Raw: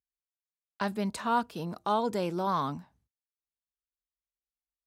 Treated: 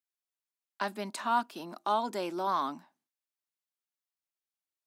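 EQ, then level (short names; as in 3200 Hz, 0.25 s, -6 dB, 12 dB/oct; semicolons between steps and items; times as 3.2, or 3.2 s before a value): HPF 260 Hz 24 dB/oct; bell 470 Hz -15 dB 0.21 oct; 0.0 dB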